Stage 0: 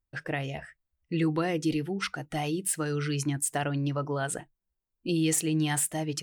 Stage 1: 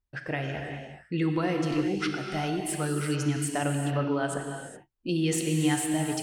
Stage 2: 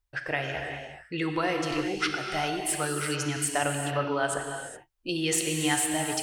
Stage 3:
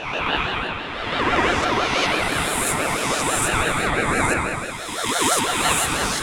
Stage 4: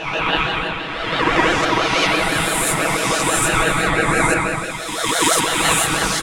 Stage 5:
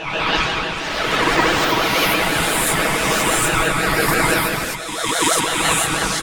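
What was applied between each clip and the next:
high-shelf EQ 7,800 Hz −10 dB; reverb whose tail is shaped and stops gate 440 ms flat, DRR 2.5 dB
parametric band 200 Hz −14.5 dB 1.6 octaves; level +5 dB
peak hold with a rise ahead of every peak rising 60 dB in 1.70 s; spring reverb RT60 1.3 s, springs 53/59 ms, chirp 50 ms, DRR −1.5 dB; ring modulator whose carrier an LFO sweeps 810 Hz, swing 30%, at 6 Hz; level +3.5 dB
comb filter 6.2 ms; level +2 dB
delay with pitch and tempo change per echo 98 ms, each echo +5 semitones, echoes 3, each echo −6 dB; level −1 dB

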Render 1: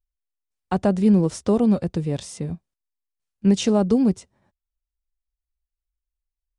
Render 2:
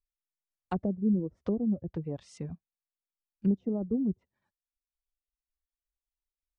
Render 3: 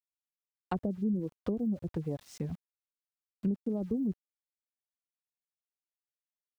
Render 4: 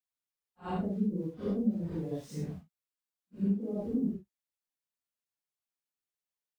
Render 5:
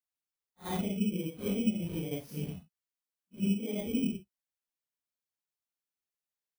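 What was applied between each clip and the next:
treble cut that deepens with the level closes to 390 Hz, closed at −17.5 dBFS; reverb reduction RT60 1.2 s; level −8.5 dB
centre clipping without the shift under −54 dBFS; downward compressor 2.5 to 1, threshold −35 dBFS, peak gain reduction 9 dB; level +3.5 dB
random phases in long frames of 200 ms
samples in bit-reversed order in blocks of 16 samples

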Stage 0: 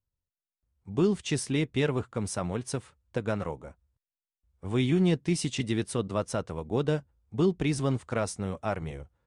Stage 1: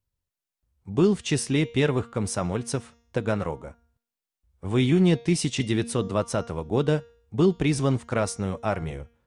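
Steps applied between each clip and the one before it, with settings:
hum removal 234.1 Hz, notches 30
level +4.5 dB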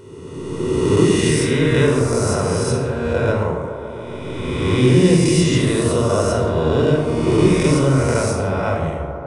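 peak hold with a rise ahead of every peak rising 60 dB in 2.16 s
delay with a band-pass on its return 142 ms, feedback 84%, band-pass 660 Hz, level −10.5 dB
convolution reverb RT60 1.0 s, pre-delay 27 ms, DRR 2 dB
level −2 dB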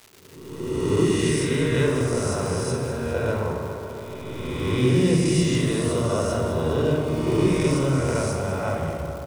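fade in at the beginning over 0.83 s
surface crackle 430 per second −29 dBFS
repeating echo 204 ms, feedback 59%, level −10.5 dB
level −6.5 dB

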